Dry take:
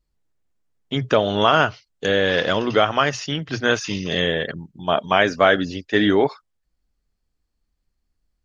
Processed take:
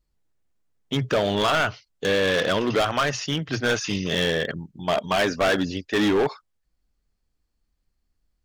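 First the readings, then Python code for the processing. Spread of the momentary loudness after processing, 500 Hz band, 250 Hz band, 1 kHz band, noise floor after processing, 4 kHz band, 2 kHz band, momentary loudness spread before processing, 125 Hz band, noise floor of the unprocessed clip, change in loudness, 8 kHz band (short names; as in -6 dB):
7 LU, -3.5 dB, -2.5 dB, -5.0 dB, -74 dBFS, -2.5 dB, -3.5 dB, 10 LU, -1.5 dB, -74 dBFS, -3.5 dB, n/a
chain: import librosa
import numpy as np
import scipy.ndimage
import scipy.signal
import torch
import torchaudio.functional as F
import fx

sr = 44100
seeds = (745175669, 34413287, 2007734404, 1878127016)

y = np.clip(x, -10.0 ** (-17.0 / 20.0), 10.0 ** (-17.0 / 20.0))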